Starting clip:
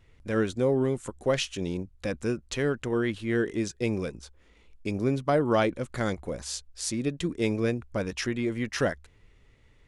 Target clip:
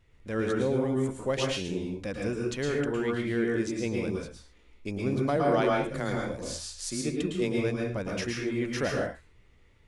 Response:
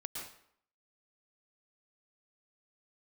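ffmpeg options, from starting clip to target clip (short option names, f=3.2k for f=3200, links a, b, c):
-filter_complex "[0:a]asettb=1/sr,asplit=3[a][b][c];[a]atrim=end=5.364[d];[b]atrim=start=5.36:end=7.58,asetpts=PTS-STARTPTS,afade=t=in:d=0.004:c=qsin,afade=t=out:st=2.216:d=0.004:c=qsin,afreqshift=16[e];[c]atrim=start=7.576[f];[d][e]acrossfade=d=0.004:c1=hsin:c2=qsin[g];[g][f]acrossfade=d=0.004:c1=qsin:c2=hsin[h];[1:a]atrim=start_sample=2205,afade=t=out:st=0.32:d=0.01,atrim=end_sample=14553[i];[h][i]afir=irnorm=-1:irlink=0"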